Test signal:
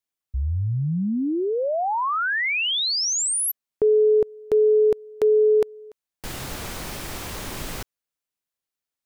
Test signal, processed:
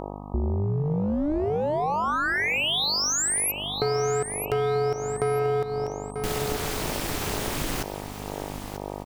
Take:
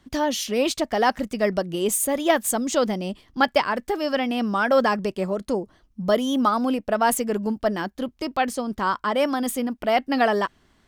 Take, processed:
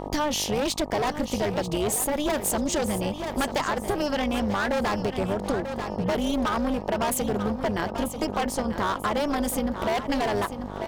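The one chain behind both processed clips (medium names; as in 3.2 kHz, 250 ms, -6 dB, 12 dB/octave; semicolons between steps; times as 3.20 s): hard clipper -21.5 dBFS; on a send: feedback delay 939 ms, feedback 33%, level -12 dB; on the sum: mains buzz 50 Hz, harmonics 19, -40 dBFS -1 dB/octave; AM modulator 300 Hz, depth 70%; compression 4:1, threshold -30 dBFS; trim +7.5 dB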